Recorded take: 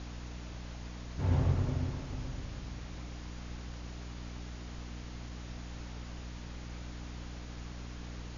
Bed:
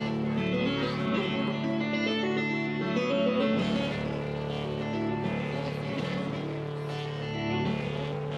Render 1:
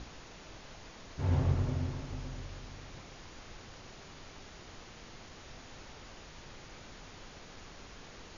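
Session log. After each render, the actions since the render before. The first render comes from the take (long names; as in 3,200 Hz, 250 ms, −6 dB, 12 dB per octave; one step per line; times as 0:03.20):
mains-hum notches 60/120/180/240/300 Hz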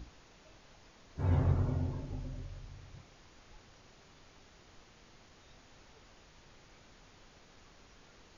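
noise reduction from a noise print 9 dB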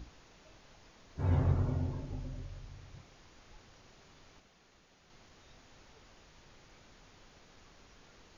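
0:04.40–0:05.10: fill with room tone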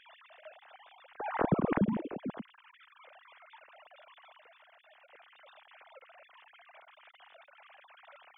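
three sine waves on the formant tracks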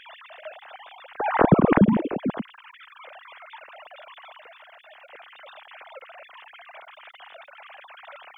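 level +12 dB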